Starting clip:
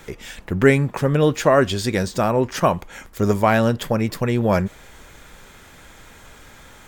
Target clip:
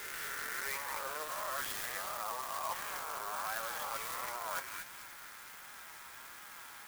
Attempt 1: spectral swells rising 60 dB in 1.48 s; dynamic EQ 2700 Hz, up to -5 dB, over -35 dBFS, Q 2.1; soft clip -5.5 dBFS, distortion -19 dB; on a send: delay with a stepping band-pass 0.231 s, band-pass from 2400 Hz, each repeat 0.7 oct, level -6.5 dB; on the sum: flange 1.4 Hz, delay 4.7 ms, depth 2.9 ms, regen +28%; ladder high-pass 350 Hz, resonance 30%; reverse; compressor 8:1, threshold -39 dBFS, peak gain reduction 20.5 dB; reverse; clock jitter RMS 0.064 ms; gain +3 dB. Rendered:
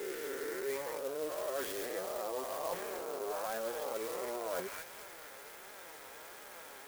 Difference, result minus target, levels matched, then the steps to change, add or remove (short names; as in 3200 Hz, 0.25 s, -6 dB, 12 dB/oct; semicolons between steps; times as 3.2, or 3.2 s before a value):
250 Hz band +12.5 dB
change: ladder high-pass 840 Hz, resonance 30%